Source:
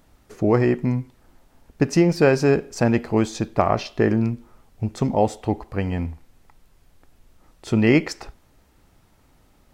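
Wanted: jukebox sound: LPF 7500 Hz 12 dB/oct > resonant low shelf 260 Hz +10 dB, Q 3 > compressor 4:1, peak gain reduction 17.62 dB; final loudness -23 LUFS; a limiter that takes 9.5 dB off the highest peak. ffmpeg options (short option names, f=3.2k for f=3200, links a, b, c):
-af "alimiter=limit=-12.5dB:level=0:latency=1,lowpass=7.5k,lowshelf=f=260:t=q:w=3:g=10,acompressor=threshold=-25dB:ratio=4,volume=5.5dB"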